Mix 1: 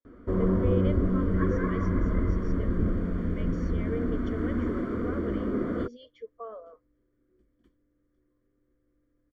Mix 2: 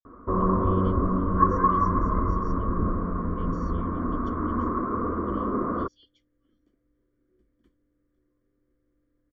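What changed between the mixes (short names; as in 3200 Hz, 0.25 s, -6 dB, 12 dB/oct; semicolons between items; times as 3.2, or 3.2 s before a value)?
speech: add inverse Chebyshev band-stop 260–800 Hz, stop band 80 dB; first sound: add synth low-pass 1100 Hz, resonance Q 9.3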